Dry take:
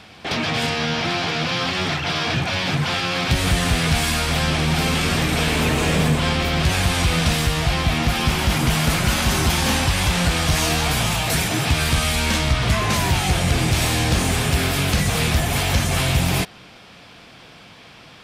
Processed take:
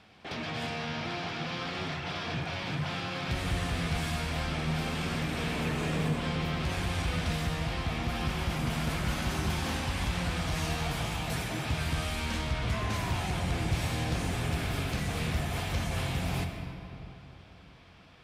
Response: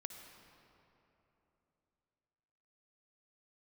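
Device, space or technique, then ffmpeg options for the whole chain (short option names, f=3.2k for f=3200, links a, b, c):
swimming-pool hall: -filter_complex "[1:a]atrim=start_sample=2205[a];[0:a][a]afir=irnorm=-1:irlink=0,highshelf=f=4.1k:g=-6.5,volume=-8.5dB"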